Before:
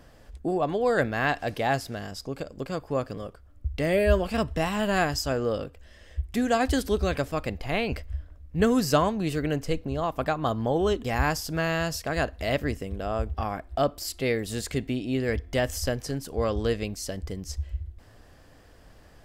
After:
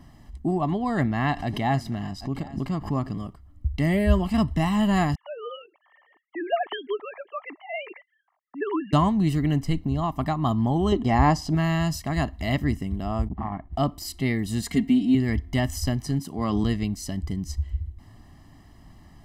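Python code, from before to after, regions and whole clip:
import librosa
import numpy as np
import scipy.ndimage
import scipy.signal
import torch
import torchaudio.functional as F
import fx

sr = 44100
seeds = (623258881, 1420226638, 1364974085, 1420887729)

y = fx.chain(x, sr, fx.high_shelf(hz=6500.0, db=-8.5),
    fx.echo_single(ms=783, db=-21.0),
    fx.pre_swell(db_per_s=140.0), at=(0.72, 3.14))
y = fx.chain(y, sr, fx.sine_speech(),
    fx.env_lowpass(base_hz=1500.0, full_db=-17.5),
    fx.highpass(hz=420.0, slope=12), at=(5.15, 8.93))
y = fx.chain(y, sr, fx.lowpass(hz=6900.0, slope=12),
    fx.peak_eq(hz=530.0, db=9.5, octaves=1.8), at=(10.92, 11.55))
y = fx.chain(y, sr, fx.bessel_lowpass(hz=1900.0, order=4),
    fx.transformer_sat(knee_hz=490.0), at=(13.28, 13.73))
y = fx.chain(y, sr, fx.highpass(hz=120.0, slope=6),
    fx.comb(ms=4.3, depth=0.98), at=(14.62, 15.15))
y = fx.chain(y, sr, fx.highpass(hz=130.0, slope=12),
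    fx.sustainer(db_per_s=22.0), at=(16.19, 16.64))
y = fx.peak_eq(y, sr, hz=210.0, db=8.5, octaves=2.4)
y = y + 0.87 * np.pad(y, (int(1.0 * sr / 1000.0), 0))[:len(y)]
y = y * librosa.db_to_amplitude(-4.0)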